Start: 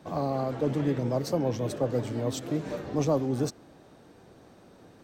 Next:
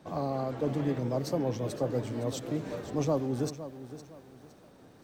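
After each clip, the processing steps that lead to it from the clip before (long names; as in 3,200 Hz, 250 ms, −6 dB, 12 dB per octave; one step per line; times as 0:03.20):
feedback echo at a low word length 512 ms, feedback 35%, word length 9 bits, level −13 dB
level −3 dB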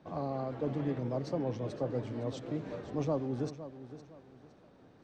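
high-frequency loss of the air 130 metres
level −3.5 dB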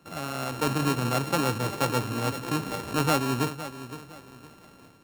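samples sorted by size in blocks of 32 samples
automatic gain control gain up to 7 dB
level +1 dB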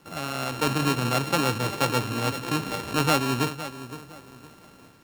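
dynamic equaliser 3,200 Hz, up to +4 dB, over −43 dBFS, Q 0.74
bit-depth reduction 10 bits, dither none
level +1 dB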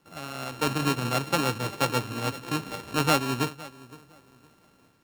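expander for the loud parts 1.5 to 1, over −38 dBFS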